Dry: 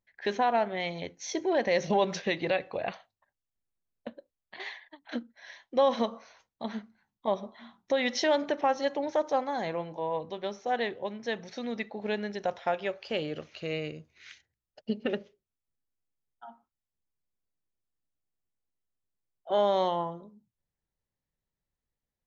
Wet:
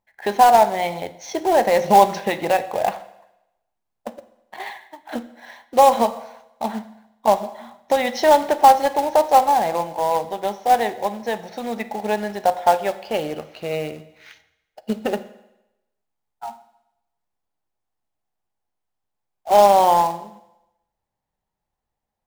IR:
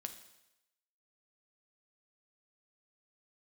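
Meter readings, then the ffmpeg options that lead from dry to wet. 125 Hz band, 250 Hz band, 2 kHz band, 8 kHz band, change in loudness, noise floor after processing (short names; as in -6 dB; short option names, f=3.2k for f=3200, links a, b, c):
+6.0 dB, +6.0 dB, +6.0 dB, n/a, +12.0 dB, -81 dBFS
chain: -filter_complex "[0:a]equalizer=f=820:t=o:w=0.75:g=13.5,acrusher=bits=3:mode=log:mix=0:aa=0.000001,asplit=2[a][b];[1:a]atrim=start_sample=2205,highshelf=f=3.7k:g=-8.5[c];[b][c]afir=irnorm=-1:irlink=0,volume=7.5dB[d];[a][d]amix=inputs=2:normalize=0,volume=-3.5dB"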